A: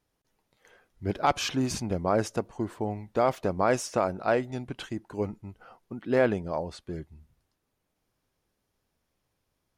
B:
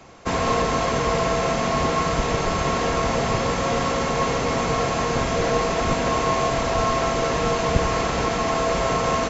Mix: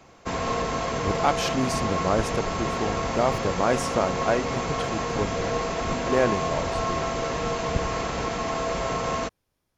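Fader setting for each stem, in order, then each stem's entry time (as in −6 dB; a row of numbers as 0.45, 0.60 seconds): +1.0, −5.5 decibels; 0.00, 0.00 seconds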